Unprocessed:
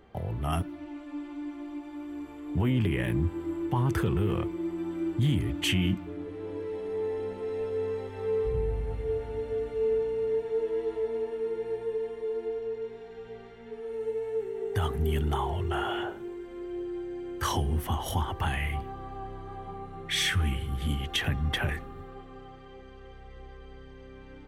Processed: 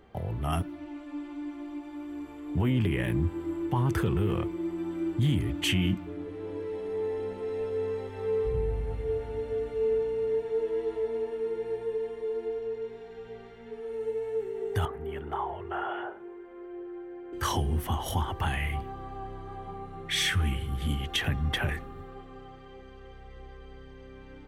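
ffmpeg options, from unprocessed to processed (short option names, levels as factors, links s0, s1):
-filter_complex "[0:a]asettb=1/sr,asplit=3[s0][s1][s2];[s0]atrim=end=14.854[s3];[s1]atrim=start=14.85:end=17.33,asetpts=PTS-STARTPTS,afade=t=in:d=0.004:c=qsin,afade=t=out:st=2.476:d=0.004:c=qsin,acrossover=split=370 2200:gain=0.178 1 0.0891[s4][s5][s6];[s4][s5][s6]amix=inputs=3:normalize=0[s7];[s2]atrim=start=17.326[s8];[s3][s7]acrossfade=d=0.004:c1=hsin:c2=qsin[s9];[s9][s8]acrossfade=d=0.004:c1=qsin:c2=hsin"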